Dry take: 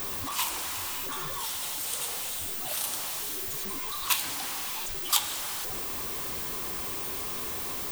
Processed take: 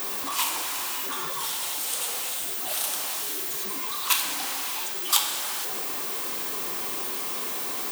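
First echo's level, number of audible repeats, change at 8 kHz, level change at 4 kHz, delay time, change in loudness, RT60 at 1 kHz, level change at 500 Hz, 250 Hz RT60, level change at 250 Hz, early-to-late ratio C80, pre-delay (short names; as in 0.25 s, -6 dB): none, none, +3.5 dB, +4.0 dB, none, +3.5 dB, 0.85 s, +3.5 dB, 1.2 s, +2.0 dB, 10.5 dB, 28 ms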